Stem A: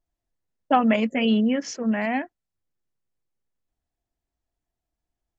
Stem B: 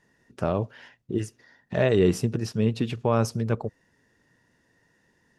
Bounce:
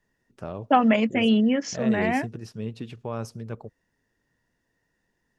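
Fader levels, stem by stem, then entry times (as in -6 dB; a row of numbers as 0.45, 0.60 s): +0.5, -9.5 dB; 0.00, 0.00 s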